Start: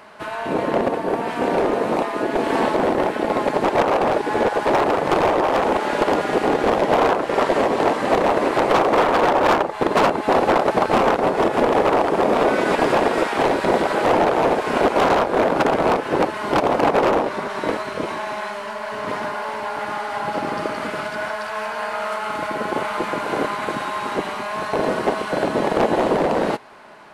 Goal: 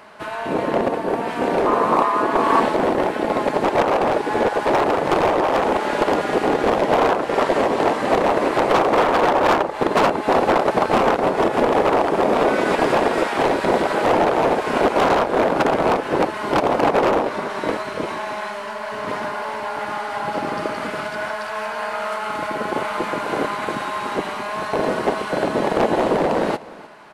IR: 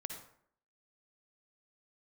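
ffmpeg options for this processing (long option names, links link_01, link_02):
-filter_complex "[0:a]asettb=1/sr,asplit=3[link_01][link_02][link_03];[link_01]atrim=end=1.664[link_04];[link_02]atrim=start=1.66:end=2.6,asetpts=PTS-STARTPTS,afade=type=in:duration=0.004:curve=qsin,afade=type=out:start_time=0.936:duration=0.004:curve=qsin,equalizer=frequency=1100:width_type=o:width=0.49:gain=14[link_05];[link_03]atrim=start=2.596[link_06];[link_04][link_05]acrossfade=duration=0.004:curve1=hsin:curve2=qsin[link_07];[link_07][link_06]acrossfade=duration=0.004:curve1=qsin:curve2=hsin,aecho=1:1:304:0.106"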